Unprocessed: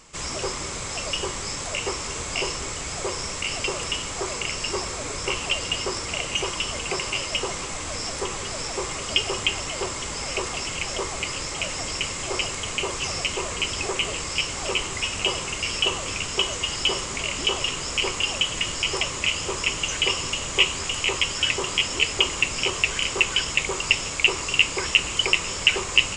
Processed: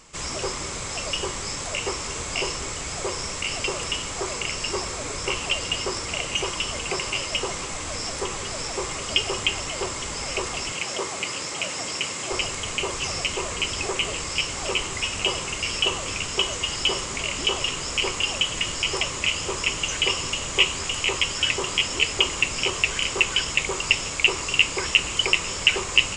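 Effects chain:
0:10.72–0:12.32: high-pass filter 150 Hz 12 dB per octave

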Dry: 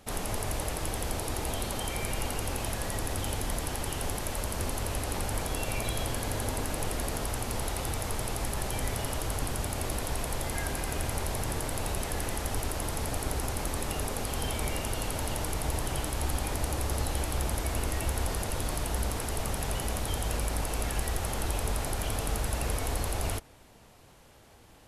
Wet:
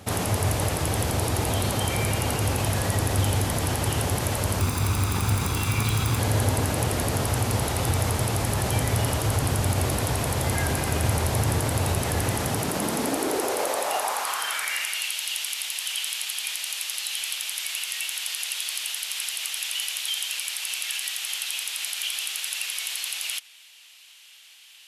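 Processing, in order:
0:04.60–0:06.19: lower of the sound and its delayed copy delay 0.82 ms
in parallel at +1 dB: brickwall limiter −27 dBFS, peak gain reduction 10.5 dB
on the sum: high-pass filter sweep 97 Hz → 2,900 Hz, 0:12.24–0:15.15
level +2.5 dB

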